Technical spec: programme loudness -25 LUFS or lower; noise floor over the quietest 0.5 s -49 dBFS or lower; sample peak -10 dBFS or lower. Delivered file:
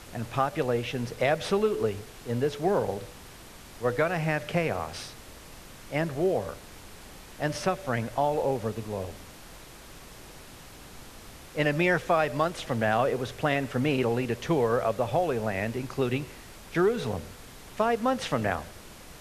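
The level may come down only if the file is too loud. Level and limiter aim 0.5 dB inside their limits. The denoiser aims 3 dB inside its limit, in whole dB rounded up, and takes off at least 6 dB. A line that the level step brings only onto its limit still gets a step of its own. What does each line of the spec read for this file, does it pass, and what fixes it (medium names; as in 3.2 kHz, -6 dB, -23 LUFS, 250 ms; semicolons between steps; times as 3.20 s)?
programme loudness -28.5 LUFS: pass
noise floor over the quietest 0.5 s -47 dBFS: fail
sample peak -11.0 dBFS: pass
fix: noise reduction 6 dB, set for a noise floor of -47 dBFS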